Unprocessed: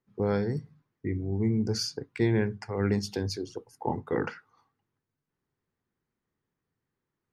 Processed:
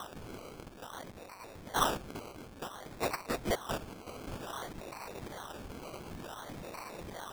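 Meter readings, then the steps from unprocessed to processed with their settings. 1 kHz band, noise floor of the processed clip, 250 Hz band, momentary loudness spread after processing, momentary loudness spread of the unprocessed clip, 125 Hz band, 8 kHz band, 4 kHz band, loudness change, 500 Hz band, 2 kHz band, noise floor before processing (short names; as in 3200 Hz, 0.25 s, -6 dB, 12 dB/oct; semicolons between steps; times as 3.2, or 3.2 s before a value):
+2.5 dB, -51 dBFS, -13.0 dB, 14 LU, 10 LU, -15.0 dB, -0.5 dB, -3.0 dB, -9.5 dB, -8.0 dB, -1.5 dB, under -85 dBFS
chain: switching spikes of -23.5 dBFS; band-pass 5800 Hz, Q 19; decimation with a swept rate 19×, swing 60% 0.55 Hz; gain +11.5 dB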